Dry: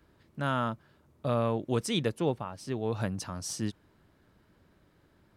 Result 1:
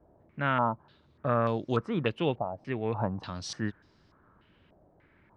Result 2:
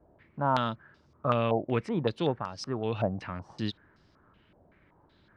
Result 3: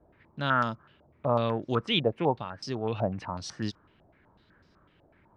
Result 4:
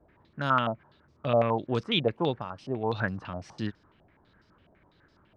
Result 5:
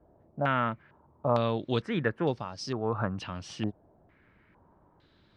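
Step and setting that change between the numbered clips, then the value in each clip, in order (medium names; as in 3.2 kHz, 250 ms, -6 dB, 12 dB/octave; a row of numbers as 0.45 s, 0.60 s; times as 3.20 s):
step-sequenced low-pass, rate: 3.4 Hz, 5.3 Hz, 8 Hz, 12 Hz, 2.2 Hz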